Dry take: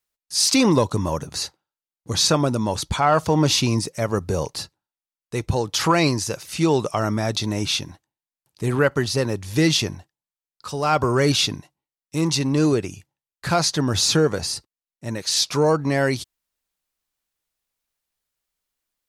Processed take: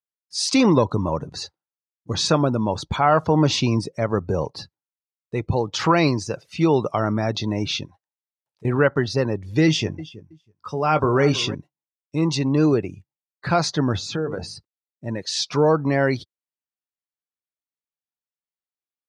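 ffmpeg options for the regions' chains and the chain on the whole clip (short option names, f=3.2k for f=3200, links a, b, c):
-filter_complex "[0:a]asettb=1/sr,asplit=3[a][b][c];[a]atrim=end=7.854[d];[b]atrim=start=7.85:end=8.65,asetpts=PTS-STARTPTS,afade=t=in:d=0.004:c=qsin,afade=t=out:st=0.796:d=0.004:c=qsin,lowshelf=f=410:t=q:w=1.5:g=-9.5,acompressor=threshold=-43dB:ratio=4:attack=3.2:release=140:knee=1:detection=peak[e];[c]atrim=start=8.646[f];[d][e]acrossfade=d=0.004:c1=hsin:c2=qsin[g];[g][f]acrossfade=d=0.004:c1=qsin:c2=hsin,asettb=1/sr,asplit=3[h][i][j];[h]atrim=end=9.664[k];[i]atrim=start=9.66:end=11.55,asetpts=PTS-STARTPTS,afade=t=in:d=0.004:c=qsin,afade=t=out:st=1.886:d=0.004:c=qsin,bandreject=f=4.1k:w=5.8,asplit=2[l][m];[m]adelay=19,volume=-10.5dB[n];[l][n]amix=inputs=2:normalize=0,atrim=end_sample=83349,aecho=1:1:323|646:0.168|0.0369,atrim=end_sample=83349[o];[j]atrim=start=11.546[p];[k][o]acrossfade=d=0.004:c1=hsin:c2=qsin[q];[q][p]acrossfade=d=0.004:c1=qsin:c2=hsin,asettb=1/sr,asplit=3[r][s][t];[r]atrim=end=13.964[u];[s]atrim=start=13.96:end=14.56,asetpts=PTS-STARTPTS,afade=t=in:d=0.004:c=qsin,afade=t=out:st=0.596:d=0.004:c=qsin,equalizer=f=5.1k:w=1.5:g=-3,bandreject=f=50:t=h:w=6,bandreject=f=100:t=h:w=6,bandreject=f=150:t=h:w=6,bandreject=f=200:t=h:w=6,bandreject=f=250:t=h:w=6,bandreject=f=300:t=h:w=6,bandreject=f=350:t=h:w=6,bandreject=f=400:t=h:w=6,bandreject=f=450:t=h:w=6,acompressor=threshold=-25dB:ratio=2.5:attack=3.2:release=140:knee=1:detection=peak[v];[t]atrim=start=14.556[w];[u][v]acrossfade=d=0.004:c1=hsin:c2=qsin[x];[x][w]acrossfade=d=0.004:c1=qsin:c2=hsin,aemphasis=mode=reproduction:type=50kf,afftdn=nr=17:nf=-39,highpass=79,volume=1dB"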